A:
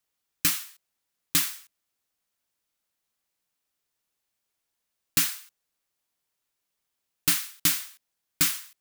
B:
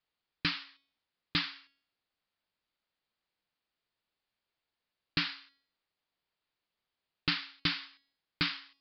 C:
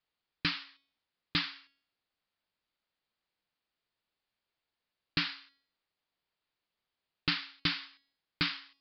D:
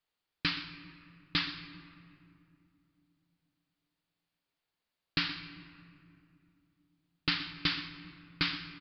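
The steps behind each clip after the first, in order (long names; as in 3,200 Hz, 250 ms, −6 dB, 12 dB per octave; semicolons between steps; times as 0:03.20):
Butterworth low-pass 4,900 Hz 96 dB per octave; hum removal 277 Hz, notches 39; level −1.5 dB
no processing that can be heard
single-tap delay 124 ms −16 dB; on a send at −9 dB: convolution reverb RT60 2.6 s, pre-delay 4 ms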